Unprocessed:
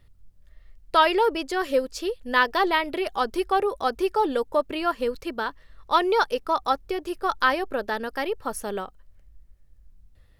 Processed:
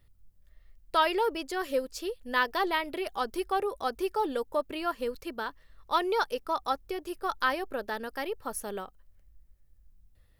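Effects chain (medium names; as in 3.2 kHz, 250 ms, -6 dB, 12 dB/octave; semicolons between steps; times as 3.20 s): treble shelf 11 kHz +11 dB; trim -6.5 dB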